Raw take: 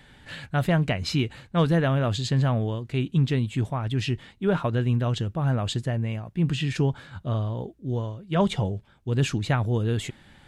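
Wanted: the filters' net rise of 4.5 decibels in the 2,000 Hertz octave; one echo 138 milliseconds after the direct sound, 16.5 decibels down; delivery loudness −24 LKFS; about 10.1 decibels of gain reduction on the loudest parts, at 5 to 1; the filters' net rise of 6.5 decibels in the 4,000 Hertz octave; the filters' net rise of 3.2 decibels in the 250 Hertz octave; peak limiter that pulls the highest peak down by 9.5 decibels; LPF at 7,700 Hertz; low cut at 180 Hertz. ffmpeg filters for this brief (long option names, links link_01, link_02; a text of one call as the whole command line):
ffmpeg -i in.wav -af "highpass=180,lowpass=7700,equalizer=frequency=250:width_type=o:gain=7,equalizer=frequency=2000:width_type=o:gain=4,equalizer=frequency=4000:width_type=o:gain=7,acompressor=threshold=-27dB:ratio=5,alimiter=limit=-22.5dB:level=0:latency=1,aecho=1:1:138:0.15,volume=10dB" out.wav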